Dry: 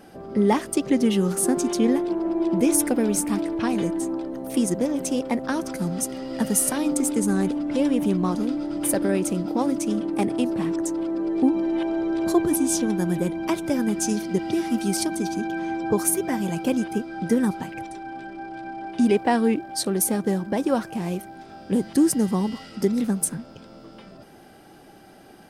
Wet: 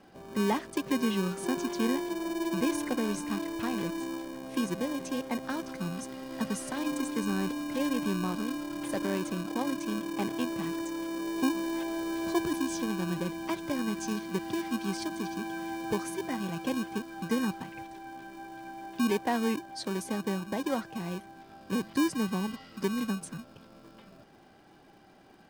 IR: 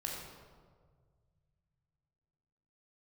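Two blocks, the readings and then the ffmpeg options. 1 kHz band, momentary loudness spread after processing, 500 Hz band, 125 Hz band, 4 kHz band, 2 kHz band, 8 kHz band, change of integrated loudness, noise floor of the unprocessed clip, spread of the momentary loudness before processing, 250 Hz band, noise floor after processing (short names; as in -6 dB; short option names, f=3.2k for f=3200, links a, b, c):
-6.0 dB, 8 LU, -9.5 dB, -8.5 dB, -3.5 dB, -3.0 dB, -15.0 dB, -9.0 dB, -47 dBFS, 8 LU, -9.0 dB, -56 dBFS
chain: -filter_complex "[0:a]lowpass=5.1k,acrossover=split=390|3400[a][b][c];[a]acrusher=samples=33:mix=1:aa=0.000001[d];[d][b][c]amix=inputs=3:normalize=0,volume=-8dB"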